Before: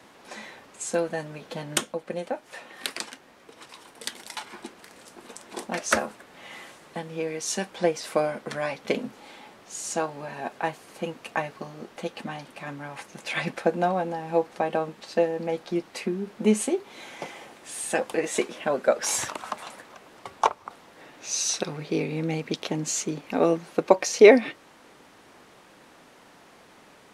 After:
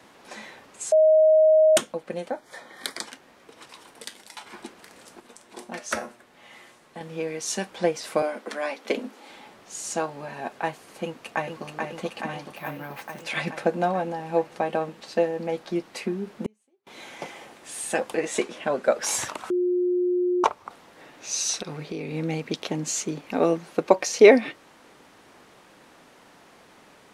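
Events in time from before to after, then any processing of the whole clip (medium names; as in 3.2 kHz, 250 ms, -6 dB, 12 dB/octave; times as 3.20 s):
0.92–1.77 s: bleep 627 Hz -13 dBFS
2.30–3.06 s: Butterworth band-stop 2.7 kHz, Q 3.7
4.04–4.46 s: feedback comb 100 Hz, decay 0.29 s
5.20–7.01 s: feedback comb 120 Hz, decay 0.33 s
8.22–9.30 s: steep high-pass 220 Hz 48 dB/octave
11.04–11.66 s: echo throw 430 ms, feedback 75%, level -3.5 dB
12.56–13.23 s: careless resampling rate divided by 3×, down filtered, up hold
16.46–16.87 s: inverted gate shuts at -26 dBFS, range -42 dB
18.15–18.87 s: low-pass 11 kHz
19.50–20.44 s: bleep 358 Hz -20 dBFS
21.60–22.14 s: compression, threshold -28 dBFS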